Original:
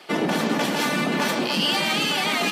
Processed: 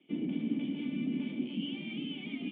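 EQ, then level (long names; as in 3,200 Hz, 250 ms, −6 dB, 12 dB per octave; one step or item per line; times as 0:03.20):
formant resonators in series i
low-shelf EQ 170 Hz +8.5 dB
−6.5 dB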